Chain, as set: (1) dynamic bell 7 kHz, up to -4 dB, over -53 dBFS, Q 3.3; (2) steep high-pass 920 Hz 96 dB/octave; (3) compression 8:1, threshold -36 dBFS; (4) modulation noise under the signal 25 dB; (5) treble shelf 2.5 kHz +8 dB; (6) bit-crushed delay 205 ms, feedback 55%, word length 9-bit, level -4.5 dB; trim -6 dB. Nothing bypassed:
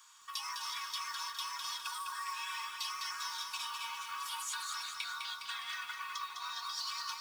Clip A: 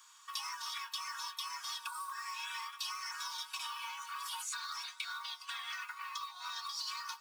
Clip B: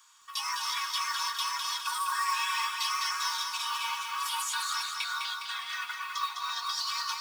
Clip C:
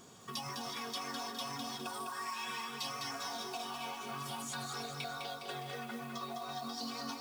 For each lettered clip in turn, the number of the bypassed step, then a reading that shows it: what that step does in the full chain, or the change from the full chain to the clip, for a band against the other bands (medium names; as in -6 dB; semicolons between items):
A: 6, crest factor change +1.5 dB; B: 3, mean gain reduction 7.0 dB; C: 2, 1 kHz band +3.0 dB